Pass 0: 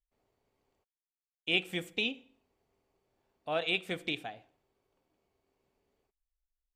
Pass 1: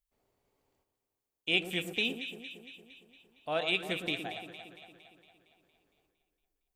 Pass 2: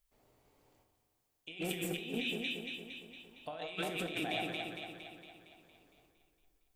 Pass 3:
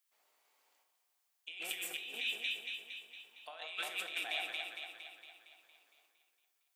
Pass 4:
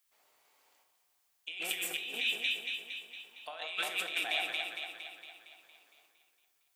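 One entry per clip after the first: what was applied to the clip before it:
high-shelf EQ 8,100 Hz +7.5 dB; on a send: delay that swaps between a low-pass and a high-pass 115 ms, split 1,300 Hz, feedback 75%, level −7.5 dB
compressor whose output falls as the input rises −42 dBFS, ratio −1; rectangular room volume 180 cubic metres, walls mixed, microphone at 0.45 metres; level +1 dB
high-pass filter 1,100 Hz 12 dB per octave; level +1.5 dB
low-shelf EQ 160 Hz +9.5 dB; level +5 dB

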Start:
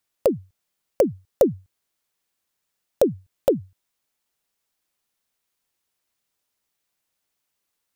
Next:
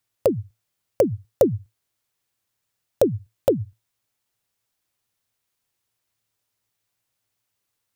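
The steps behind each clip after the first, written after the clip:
parametric band 110 Hz +15 dB 0.37 octaves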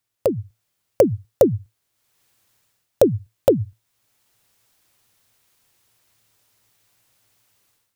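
automatic gain control gain up to 15 dB
level −1 dB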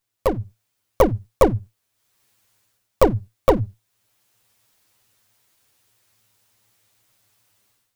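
lower of the sound and its delayed copy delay 9.5 ms
level +1.5 dB

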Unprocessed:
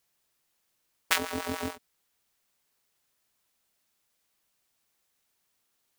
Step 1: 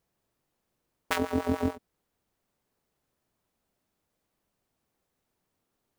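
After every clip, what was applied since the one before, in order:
tilt shelving filter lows +9 dB, about 1,100 Hz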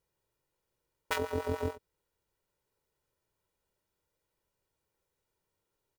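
comb filter 2.1 ms, depth 59%
level −5 dB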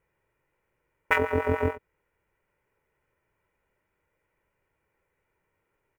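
high shelf with overshoot 3,000 Hz −11 dB, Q 3
level +7.5 dB

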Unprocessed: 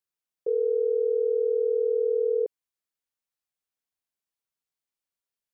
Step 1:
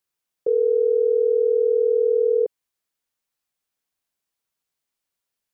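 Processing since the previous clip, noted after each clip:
dynamic equaliser 320 Hz, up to −3 dB, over −35 dBFS, Q 1.5
level +7 dB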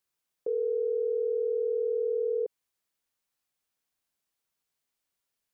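brickwall limiter −22.5 dBFS, peak gain reduction 10 dB
level −1 dB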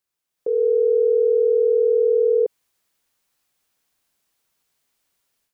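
automatic gain control gain up to 11.5 dB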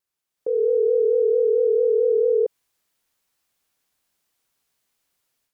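pitch vibrato 4.5 Hz 60 cents
level −1.5 dB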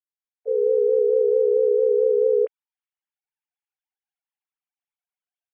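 three sine waves on the formant tracks

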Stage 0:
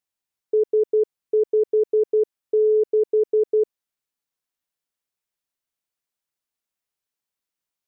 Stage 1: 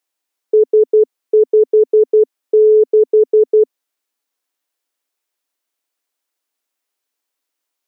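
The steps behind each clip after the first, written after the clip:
elliptic high-pass filter 260 Hz
level +9 dB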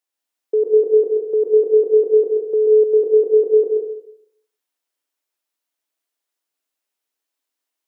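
dense smooth reverb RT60 0.73 s, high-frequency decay 0.95×, pre-delay 105 ms, DRR 0 dB
level −6.5 dB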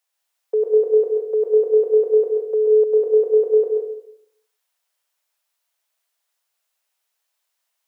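high-pass filter 540 Hz 24 dB per octave
level +6.5 dB

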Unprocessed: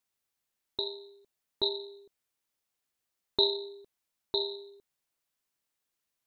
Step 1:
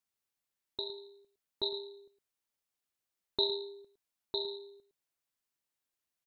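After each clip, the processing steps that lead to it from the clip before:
single-tap delay 110 ms −13 dB
level −5 dB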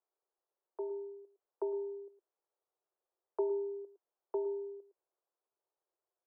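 Butterworth high-pass 340 Hz 96 dB per octave
downward compressor 1.5 to 1, threshold −44 dBFS, peak gain reduction 7 dB
Gaussian smoothing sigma 8.6 samples
level +10 dB

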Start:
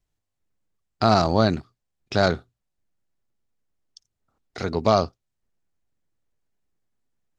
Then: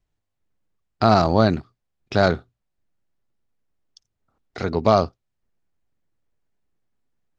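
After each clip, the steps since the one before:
high-shelf EQ 6,000 Hz −11.5 dB
level +2.5 dB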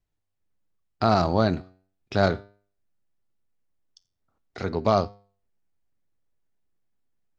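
flanger 0.39 Hz, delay 9.8 ms, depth 1.4 ms, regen +86%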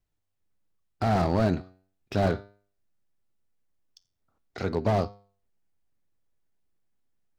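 slew-rate limiting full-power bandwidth 55 Hz

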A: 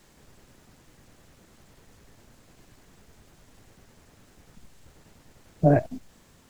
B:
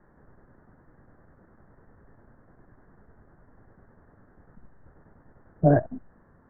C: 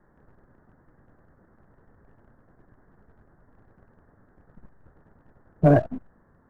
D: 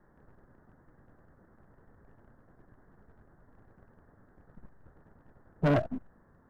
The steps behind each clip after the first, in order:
Butterworth low-pass 1,800 Hz 72 dB per octave
leveller curve on the samples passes 1
soft clipping −19.5 dBFS, distortion −10 dB; level −2 dB

